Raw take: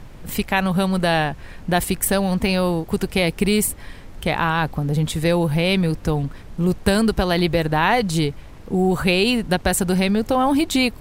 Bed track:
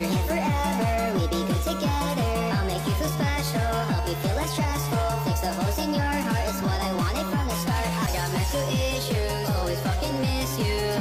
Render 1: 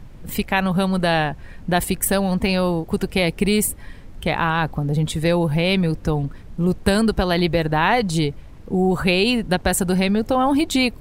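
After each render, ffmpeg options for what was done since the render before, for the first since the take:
-af "afftdn=nr=6:nf=-39"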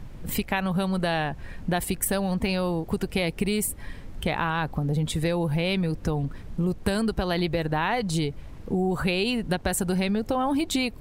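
-af "acompressor=threshold=-24dB:ratio=3"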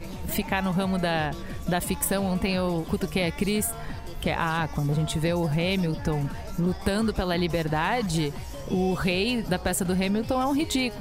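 -filter_complex "[1:a]volume=-13.5dB[a];[0:a][a]amix=inputs=2:normalize=0"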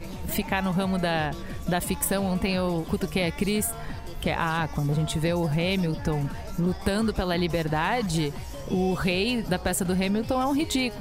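-af anull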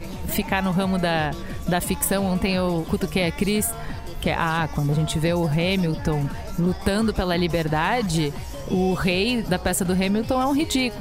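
-af "volume=3.5dB"

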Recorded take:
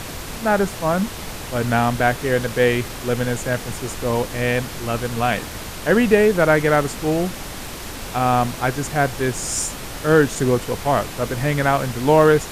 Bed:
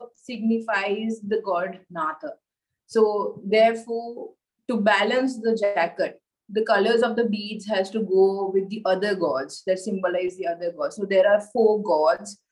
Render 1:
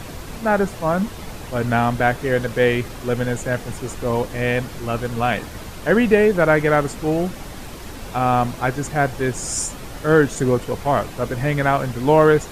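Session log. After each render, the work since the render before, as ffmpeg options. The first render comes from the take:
-af "afftdn=nr=7:nf=-33"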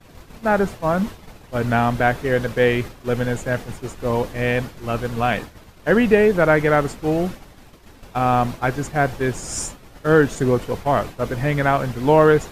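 -af "agate=range=-33dB:threshold=-24dB:ratio=3:detection=peak,equalizer=f=9.3k:t=o:w=1.3:g=-4"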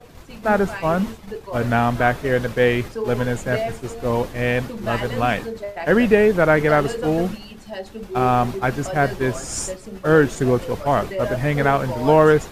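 -filter_complex "[1:a]volume=-8.5dB[a];[0:a][a]amix=inputs=2:normalize=0"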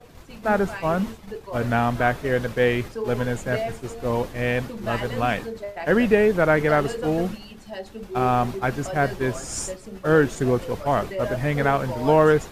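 -af "volume=-3dB"

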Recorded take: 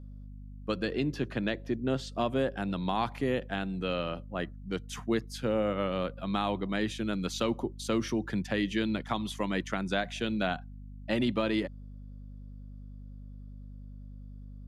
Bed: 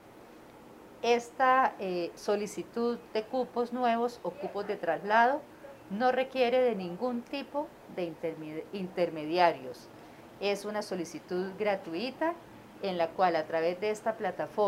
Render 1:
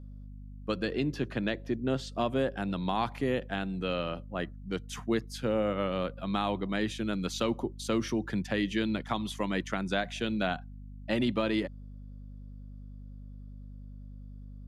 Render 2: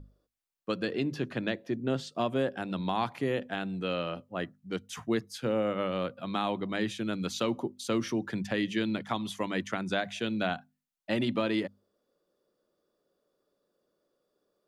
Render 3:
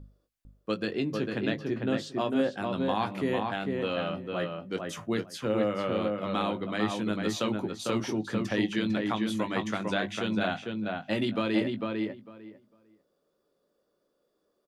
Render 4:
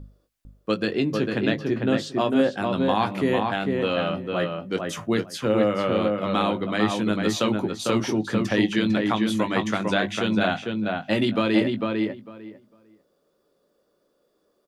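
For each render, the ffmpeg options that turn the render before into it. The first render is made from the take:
-af anull
-af "bandreject=f=50:t=h:w=6,bandreject=f=100:t=h:w=6,bandreject=f=150:t=h:w=6,bandreject=f=200:t=h:w=6,bandreject=f=250:t=h:w=6"
-filter_complex "[0:a]asplit=2[a][b];[b]adelay=19,volume=-8.5dB[c];[a][c]amix=inputs=2:normalize=0,asplit=2[d][e];[e]adelay=450,lowpass=f=2.3k:p=1,volume=-3dB,asplit=2[f][g];[g]adelay=450,lowpass=f=2.3k:p=1,volume=0.17,asplit=2[h][i];[i]adelay=450,lowpass=f=2.3k:p=1,volume=0.17[j];[d][f][h][j]amix=inputs=4:normalize=0"
-af "volume=6.5dB"

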